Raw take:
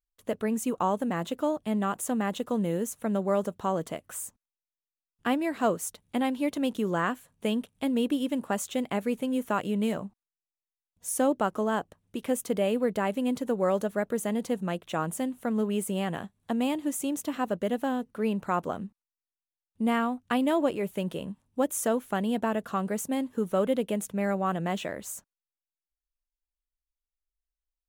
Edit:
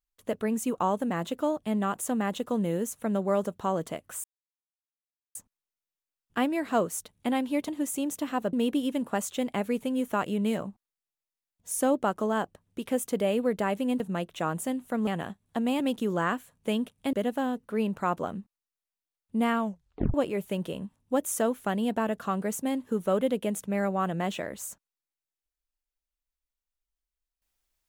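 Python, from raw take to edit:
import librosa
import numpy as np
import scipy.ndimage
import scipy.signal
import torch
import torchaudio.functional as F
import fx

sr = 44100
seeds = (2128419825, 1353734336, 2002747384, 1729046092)

y = fx.edit(x, sr, fx.insert_silence(at_s=4.24, length_s=1.11),
    fx.swap(start_s=6.57, length_s=1.33, other_s=16.74, other_length_s=0.85),
    fx.cut(start_s=13.37, length_s=1.16),
    fx.cut(start_s=15.6, length_s=0.41),
    fx.tape_stop(start_s=20.05, length_s=0.55), tone=tone)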